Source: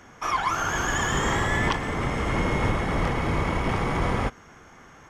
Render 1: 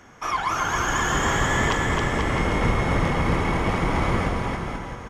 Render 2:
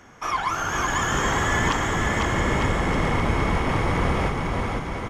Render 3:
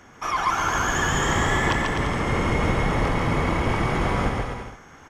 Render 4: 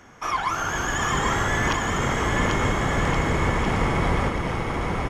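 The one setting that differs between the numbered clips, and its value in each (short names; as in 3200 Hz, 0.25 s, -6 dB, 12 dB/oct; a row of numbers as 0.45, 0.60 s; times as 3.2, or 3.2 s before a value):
bouncing-ball echo, first gap: 0.27, 0.5, 0.14, 0.79 s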